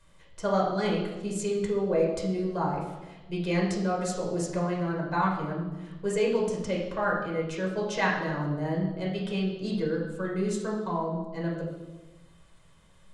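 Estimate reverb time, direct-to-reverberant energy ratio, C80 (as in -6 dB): 1.1 s, -3.0 dB, 6.0 dB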